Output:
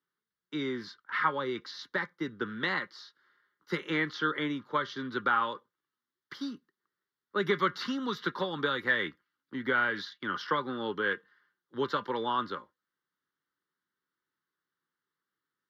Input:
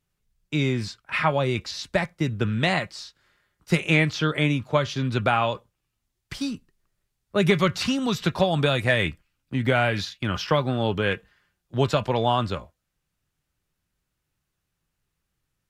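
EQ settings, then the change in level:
high-pass filter 140 Hz 12 dB per octave
three-way crossover with the lows and the highs turned down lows −22 dB, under 280 Hz, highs −13 dB, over 2,900 Hz
phaser with its sweep stopped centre 2,500 Hz, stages 6
0.0 dB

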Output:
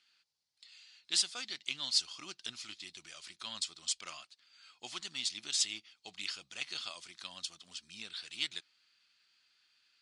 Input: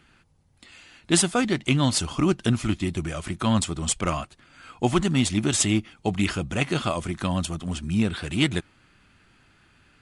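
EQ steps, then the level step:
resonant band-pass 4,600 Hz, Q 2.9
0.0 dB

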